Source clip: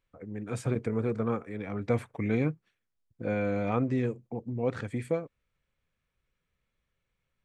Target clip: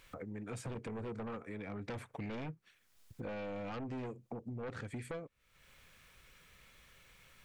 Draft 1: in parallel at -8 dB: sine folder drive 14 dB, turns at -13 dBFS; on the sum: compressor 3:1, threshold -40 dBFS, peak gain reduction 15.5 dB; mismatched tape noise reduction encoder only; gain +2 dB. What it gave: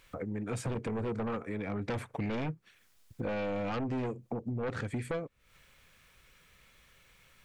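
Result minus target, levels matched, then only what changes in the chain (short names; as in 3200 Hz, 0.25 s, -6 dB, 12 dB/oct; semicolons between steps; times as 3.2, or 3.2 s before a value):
compressor: peak gain reduction -8 dB
change: compressor 3:1, threshold -52 dBFS, peak gain reduction 23.5 dB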